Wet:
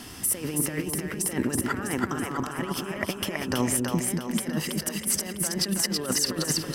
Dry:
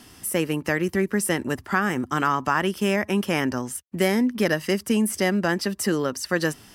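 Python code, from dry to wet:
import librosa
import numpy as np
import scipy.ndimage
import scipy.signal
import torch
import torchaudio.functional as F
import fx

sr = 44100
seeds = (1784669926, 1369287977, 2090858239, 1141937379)

p1 = fx.over_compress(x, sr, threshold_db=-29.0, ratio=-0.5)
y = p1 + fx.echo_split(p1, sr, split_hz=440.0, low_ms=192, high_ms=326, feedback_pct=52, wet_db=-3.0, dry=0)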